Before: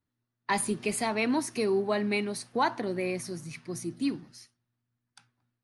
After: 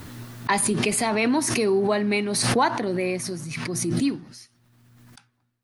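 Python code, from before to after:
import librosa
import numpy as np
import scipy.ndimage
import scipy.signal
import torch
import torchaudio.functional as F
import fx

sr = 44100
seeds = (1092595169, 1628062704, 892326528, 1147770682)

y = fx.pre_swell(x, sr, db_per_s=25.0)
y = y * 10.0 ** (5.0 / 20.0)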